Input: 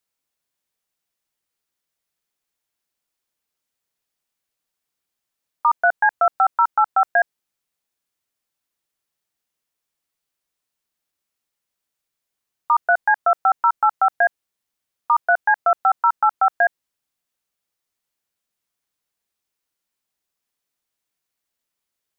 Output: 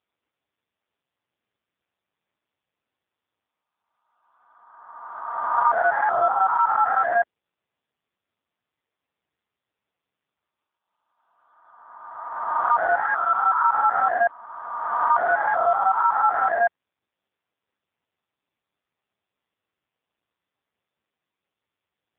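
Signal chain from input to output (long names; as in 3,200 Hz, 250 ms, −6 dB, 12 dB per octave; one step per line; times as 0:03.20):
peak hold with a rise ahead of every peak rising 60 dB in 1.78 s
low-pass filter 1,400 Hz 6 dB per octave
0:13.01–0:13.67: low shelf with overshoot 750 Hz −12 dB, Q 1.5
AMR narrowband 5.15 kbit/s 8,000 Hz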